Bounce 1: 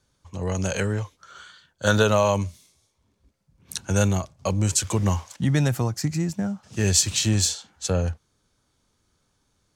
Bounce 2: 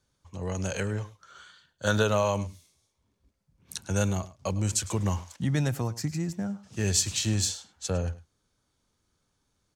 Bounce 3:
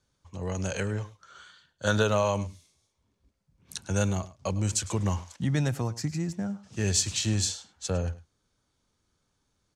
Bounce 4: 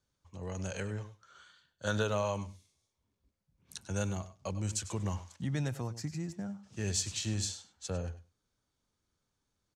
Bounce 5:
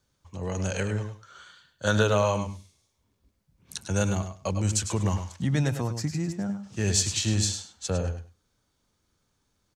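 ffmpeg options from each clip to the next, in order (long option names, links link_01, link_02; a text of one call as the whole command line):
ffmpeg -i in.wav -af "aecho=1:1:105:0.126,volume=-5.5dB" out.wav
ffmpeg -i in.wav -af "lowpass=10000" out.wav
ffmpeg -i in.wav -af "aecho=1:1:96:0.15,volume=-7.5dB" out.wav
ffmpeg -i in.wav -filter_complex "[0:a]asplit=2[link_01][link_02];[link_02]adelay=105,volume=-13dB,highshelf=frequency=4000:gain=-2.36[link_03];[link_01][link_03]amix=inputs=2:normalize=0,volume=8.5dB" out.wav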